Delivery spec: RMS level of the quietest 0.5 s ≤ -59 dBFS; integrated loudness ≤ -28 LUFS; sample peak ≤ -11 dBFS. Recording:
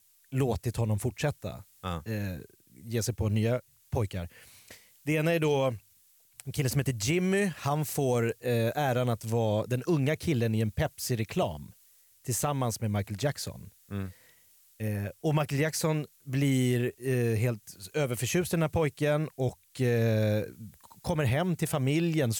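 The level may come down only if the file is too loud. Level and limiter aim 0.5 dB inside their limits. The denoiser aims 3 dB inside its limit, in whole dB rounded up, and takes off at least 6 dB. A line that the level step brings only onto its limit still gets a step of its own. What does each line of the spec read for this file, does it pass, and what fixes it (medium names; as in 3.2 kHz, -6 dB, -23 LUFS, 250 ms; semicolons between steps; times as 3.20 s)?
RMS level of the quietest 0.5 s -63 dBFS: pass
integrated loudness -30.0 LUFS: pass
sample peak -15.5 dBFS: pass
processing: none needed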